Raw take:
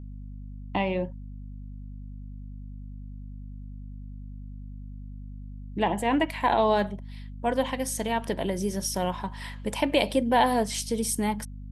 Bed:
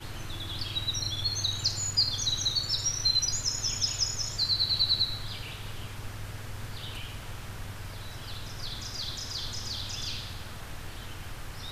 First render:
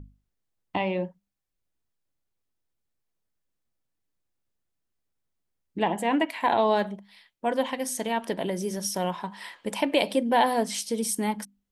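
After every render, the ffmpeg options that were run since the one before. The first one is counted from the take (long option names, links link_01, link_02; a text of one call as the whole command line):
ffmpeg -i in.wav -af "bandreject=frequency=50:width_type=h:width=6,bandreject=frequency=100:width_type=h:width=6,bandreject=frequency=150:width_type=h:width=6,bandreject=frequency=200:width_type=h:width=6,bandreject=frequency=250:width_type=h:width=6" out.wav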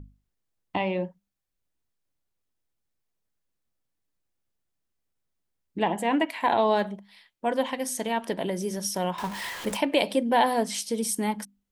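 ffmpeg -i in.wav -filter_complex "[0:a]asettb=1/sr,asplit=3[link_01][link_02][link_03];[link_01]atrim=end=9.184[link_04];[link_02]atrim=start=9.18:end=9.77,asetpts=PTS-STARTPTS,afade=type=in:duration=0.004:curve=qsin,afade=type=out:start_time=0.586:duration=0.004:curve=qsin,aeval=exprs='val(0)+0.5*0.0237*sgn(val(0))':channel_layout=same[link_05];[link_03]atrim=start=9.766[link_06];[link_04][link_05]acrossfade=duration=0.004:curve1=hsin:curve2=qsin[link_07];[link_07][link_06]acrossfade=duration=0.004:curve1=qsin:curve2=hsin" out.wav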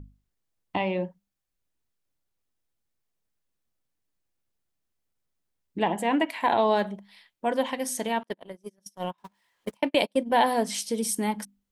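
ffmpeg -i in.wav -filter_complex "[0:a]asettb=1/sr,asplit=3[link_01][link_02][link_03];[link_01]atrim=end=8.234[link_04];[link_02]atrim=start=8.23:end=10.33,asetpts=PTS-STARTPTS,afade=type=in:duration=0.004:curve=qsin,afade=type=out:start_time=2.096:duration=0.004:curve=qsin,agate=range=-37dB:threshold=-27dB:ratio=16:release=100:detection=peak[link_05];[link_03]atrim=start=10.326[link_06];[link_04][link_05]acrossfade=duration=0.004:curve1=hsin:curve2=qsin[link_07];[link_07][link_06]acrossfade=duration=0.004:curve1=qsin:curve2=hsin" out.wav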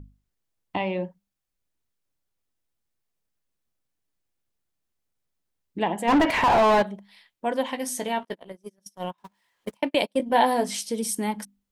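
ffmpeg -i in.wav -filter_complex "[0:a]asplit=3[link_01][link_02][link_03];[link_01]afade=type=out:start_time=6.07:duration=0.02[link_04];[link_02]asplit=2[link_05][link_06];[link_06]highpass=frequency=720:poles=1,volume=32dB,asoftclip=type=tanh:threshold=-11dB[link_07];[link_05][link_07]amix=inputs=2:normalize=0,lowpass=frequency=1300:poles=1,volume=-6dB,afade=type=in:start_time=6.07:duration=0.02,afade=type=out:start_time=6.81:duration=0.02[link_08];[link_03]afade=type=in:start_time=6.81:duration=0.02[link_09];[link_04][link_08][link_09]amix=inputs=3:normalize=0,asettb=1/sr,asplit=3[link_10][link_11][link_12];[link_10]atrim=end=7.684[link_13];[link_11]atrim=start=7.68:end=8.52,asetpts=PTS-STARTPTS,afade=type=in:duration=0.004:curve=qsin,afade=type=out:start_time=0.836:duration=0.004:curve=qsin,asplit=2[link_14][link_15];[link_15]adelay=16,volume=-9dB[link_16];[link_14][link_16]amix=inputs=2:normalize=0,atrim=end_sample=37044[link_17];[link_12]atrim=start=8.516[link_18];[link_13][link_17]acrossfade=duration=0.004:curve1=hsin:curve2=qsin[link_19];[link_19][link_18]acrossfade=duration=0.004:curve1=qsin:curve2=hsin,asettb=1/sr,asplit=3[link_20][link_21][link_22];[link_20]atrim=end=10.184[link_23];[link_21]atrim=start=10.18:end=10.77,asetpts=PTS-STARTPTS,afade=type=in:duration=0.004:curve=qsin,afade=type=out:start_time=0.586:duration=0.004:curve=qsin,asplit=2[link_24][link_25];[link_25]adelay=16,volume=-6dB[link_26];[link_24][link_26]amix=inputs=2:normalize=0,atrim=end_sample=26019[link_27];[link_22]atrim=start=10.766[link_28];[link_23][link_27]acrossfade=duration=0.004:curve1=hsin:curve2=qsin[link_29];[link_29][link_28]acrossfade=duration=0.004:curve1=qsin:curve2=hsin" out.wav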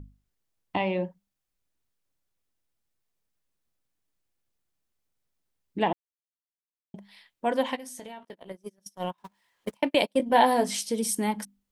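ffmpeg -i in.wav -filter_complex "[0:a]asplit=3[link_01][link_02][link_03];[link_01]afade=type=out:start_time=7.75:duration=0.02[link_04];[link_02]acompressor=threshold=-39dB:ratio=6:attack=3.2:release=140:knee=1:detection=peak,afade=type=in:start_time=7.75:duration=0.02,afade=type=out:start_time=8.46:duration=0.02[link_05];[link_03]afade=type=in:start_time=8.46:duration=0.02[link_06];[link_04][link_05][link_06]amix=inputs=3:normalize=0,asplit=3[link_07][link_08][link_09];[link_07]atrim=end=5.93,asetpts=PTS-STARTPTS,afade=type=out:start_time=5.926:duration=0.004:curve=hsin[link_10];[link_08]atrim=start=5.93:end=6.94,asetpts=PTS-STARTPTS,volume=0[link_11];[link_09]atrim=start=6.94,asetpts=PTS-STARTPTS,afade=type=in:duration=0.004:curve=hsin[link_12];[link_10][link_11][link_12]concat=n=3:v=0:a=1" out.wav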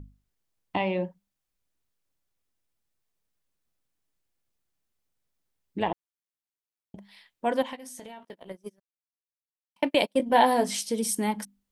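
ffmpeg -i in.wav -filter_complex "[0:a]asettb=1/sr,asplit=3[link_01][link_02][link_03];[link_01]atrim=end=5.804[link_04];[link_02]atrim=start=5.8:end=6.98,asetpts=PTS-STARTPTS,afade=type=in:duration=0.004:curve=qsin,afade=type=out:start_time=1.176:duration=0.004:curve=qsin,tremolo=f=110:d=0.571[link_05];[link_03]atrim=start=6.976[link_06];[link_04][link_05]acrossfade=duration=0.004:curve1=hsin:curve2=qsin[link_07];[link_07][link_06]acrossfade=duration=0.004:curve1=qsin:curve2=hsin,asettb=1/sr,asplit=3[link_08][link_09][link_10];[link_08]atrim=end=7.624[link_11];[link_09]atrim=start=7.62:end=8.22,asetpts=PTS-STARTPTS,afade=type=in:duration=0.004:curve=qsin,afade=type=out:start_time=0.596:duration=0.004:curve=qsin,acompressor=threshold=-39dB:ratio=2:attack=3.2:release=140:knee=1:detection=peak[link_12];[link_10]atrim=start=8.216[link_13];[link_11][link_12]acrossfade=duration=0.004:curve1=hsin:curve2=qsin[link_14];[link_14][link_13]acrossfade=duration=0.004:curve1=qsin:curve2=hsin,asplit=3[link_15][link_16][link_17];[link_15]atrim=end=8.8,asetpts=PTS-STARTPTS,afade=type=out:start_time=8.796:duration=0.004:curve=hsin[link_18];[link_16]atrim=start=8.8:end=9.76,asetpts=PTS-STARTPTS,volume=0[link_19];[link_17]atrim=start=9.76,asetpts=PTS-STARTPTS,afade=type=in:duration=0.004:curve=hsin[link_20];[link_18][link_19][link_20]concat=n=3:v=0:a=1" out.wav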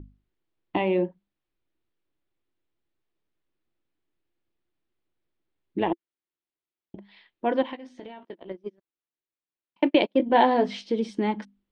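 ffmpeg -i in.wav -af "lowpass=frequency=3800:width=0.5412,lowpass=frequency=3800:width=1.3066,equalizer=frequency=340:width=2.9:gain=11.5" out.wav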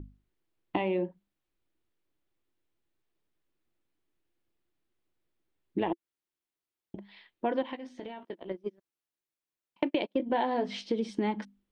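ffmpeg -i in.wav -af "acompressor=threshold=-26dB:ratio=5" out.wav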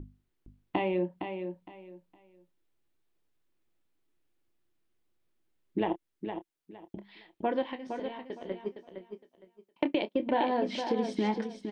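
ffmpeg -i in.wav -filter_complex "[0:a]asplit=2[link_01][link_02];[link_02]adelay=28,volume=-12.5dB[link_03];[link_01][link_03]amix=inputs=2:normalize=0,asplit=2[link_04][link_05];[link_05]aecho=0:1:462|924|1386:0.422|0.101|0.0243[link_06];[link_04][link_06]amix=inputs=2:normalize=0" out.wav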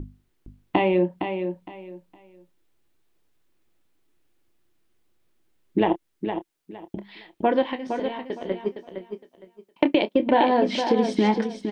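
ffmpeg -i in.wav -af "volume=9dB" out.wav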